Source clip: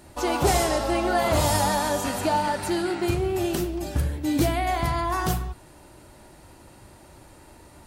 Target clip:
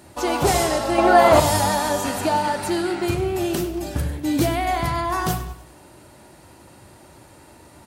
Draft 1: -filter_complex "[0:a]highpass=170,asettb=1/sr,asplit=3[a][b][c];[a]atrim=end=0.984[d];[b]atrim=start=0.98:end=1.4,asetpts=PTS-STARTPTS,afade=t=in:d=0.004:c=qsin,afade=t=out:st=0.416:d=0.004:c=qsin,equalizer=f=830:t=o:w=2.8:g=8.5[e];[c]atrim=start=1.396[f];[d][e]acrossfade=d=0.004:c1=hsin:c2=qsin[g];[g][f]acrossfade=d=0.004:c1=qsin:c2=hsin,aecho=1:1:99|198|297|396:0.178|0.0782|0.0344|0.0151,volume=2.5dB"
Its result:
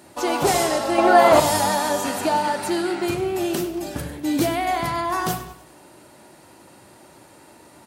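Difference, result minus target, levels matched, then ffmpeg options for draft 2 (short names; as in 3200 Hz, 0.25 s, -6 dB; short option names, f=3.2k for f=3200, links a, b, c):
125 Hz band -6.5 dB
-filter_complex "[0:a]highpass=75,asettb=1/sr,asplit=3[a][b][c];[a]atrim=end=0.984[d];[b]atrim=start=0.98:end=1.4,asetpts=PTS-STARTPTS,afade=t=in:d=0.004:c=qsin,afade=t=out:st=0.416:d=0.004:c=qsin,equalizer=f=830:t=o:w=2.8:g=8.5[e];[c]atrim=start=1.396[f];[d][e]acrossfade=d=0.004:c1=hsin:c2=qsin[g];[g][f]acrossfade=d=0.004:c1=qsin:c2=hsin,aecho=1:1:99|198|297|396:0.178|0.0782|0.0344|0.0151,volume=2.5dB"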